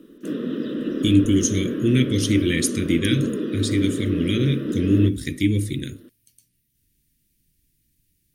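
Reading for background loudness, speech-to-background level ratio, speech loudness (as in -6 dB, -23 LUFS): -27.0 LUFS, 5.0 dB, -22.0 LUFS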